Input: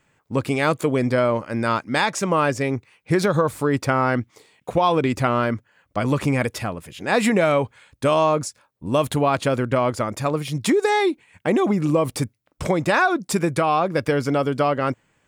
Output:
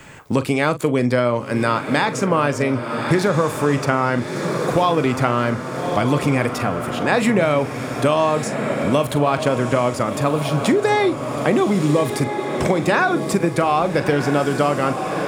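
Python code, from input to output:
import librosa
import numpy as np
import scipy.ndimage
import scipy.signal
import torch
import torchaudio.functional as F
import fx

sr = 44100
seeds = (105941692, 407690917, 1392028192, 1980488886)

y = fx.doubler(x, sr, ms=41.0, db=-13.0)
y = fx.echo_diffused(y, sr, ms=1300, feedback_pct=50, wet_db=-10)
y = fx.band_squash(y, sr, depth_pct=70)
y = y * librosa.db_to_amplitude(1.0)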